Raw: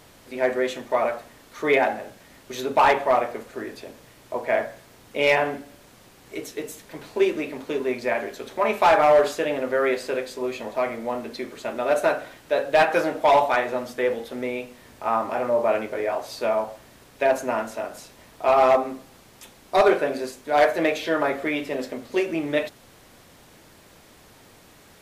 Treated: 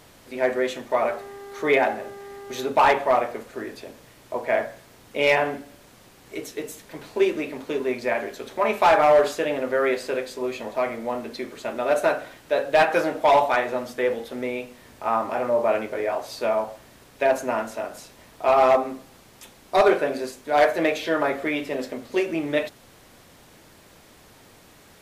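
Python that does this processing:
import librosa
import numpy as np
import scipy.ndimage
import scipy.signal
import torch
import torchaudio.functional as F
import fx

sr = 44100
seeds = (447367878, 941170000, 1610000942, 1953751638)

y = fx.dmg_buzz(x, sr, base_hz=400.0, harmonics=5, level_db=-40.0, tilt_db=-8, odd_only=False, at=(1.0, 2.69), fade=0.02)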